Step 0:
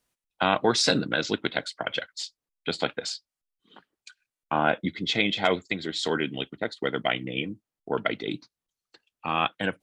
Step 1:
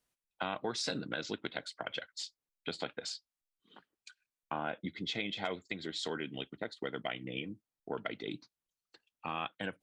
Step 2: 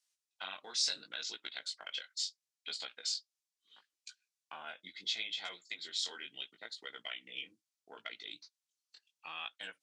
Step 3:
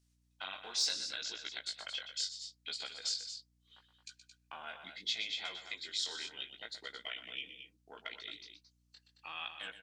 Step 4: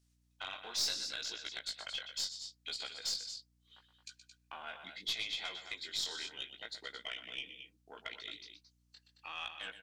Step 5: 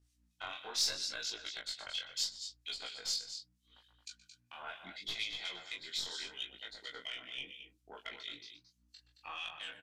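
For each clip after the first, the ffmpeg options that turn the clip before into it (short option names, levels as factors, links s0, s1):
-af "acompressor=threshold=0.0316:ratio=2.5,volume=0.501"
-af "bandpass=f=5800:t=q:w=1.1:csg=0,flanger=delay=16.5:depth=5.7:speed=0.73,volume=2.99"
-af "aecho=1:1:122.4|221.6:0.282|0.316,aeval=exprs='val(0)+0.000224*(sin(2*PI*60*n/s)+sin(2*PI*2*60*n/s)/2+sin(2*PI*3*60*n/s)/3+sin(2*PI*4*60*n/s)/4+sin(2*PI*5*60*n/s)/5)':c=same,asoftclip=type=hard:threshold=0.075"
-af "aeval=exprs='(tanh(22.4*val(0)+0.25)-tanh(0.25))/22.4':c=same,volume=1.12"
-filter_complex "[0:a]acrossover=split=2100[s0][s1];[s0]aeval=exprs='val(0)*(1-0.7/2+0.7/2*cos(2*PI*4.3*n/s))':c=same[s2];[s1]aeval=exprs='val(0)*(1-0.7/2-0.7/2*cos(2*PI*4.3*n/s))':c=same[s3];[s2][s3]amix=inputs=2:normalize=0,flanger=delay=19:depth=5.7:speed=0.77,aresample=32000,aresample=44100,volume=2"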